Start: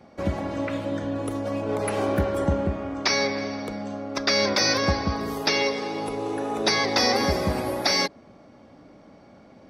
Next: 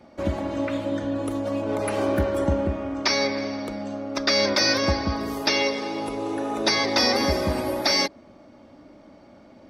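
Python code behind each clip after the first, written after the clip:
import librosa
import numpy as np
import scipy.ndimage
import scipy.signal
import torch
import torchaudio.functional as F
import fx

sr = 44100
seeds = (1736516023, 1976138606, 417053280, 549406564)

y = x + 0.36 * np.pad(x, (int(3.3 * sr / 1000.0), 0))[:len(x)]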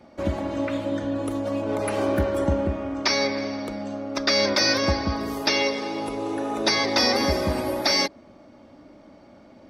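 y = x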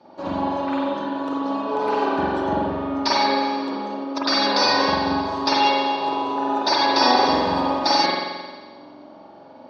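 y = fx.cabinet(x, sr, low_hz=190.0, low_slope=12, high_hz=5700.0, hz=(210.0, 910.0, 2100.0, 4300.0), db=(-4, 9, -10, 6))
y = fx.rev_spring(y, sr, rt60_s=1.4, pass_ms=(44,), chirp_ms=45, drr_db=-7.0)
y = y * 10.0 ** (-2.5 / 20.0)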